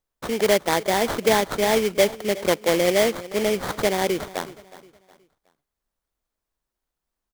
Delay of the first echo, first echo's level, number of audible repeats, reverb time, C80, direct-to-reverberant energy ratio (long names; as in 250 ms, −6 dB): 366 ms, −18.0 dB, 2, no reverb audible, no reverb audible, no reverb audible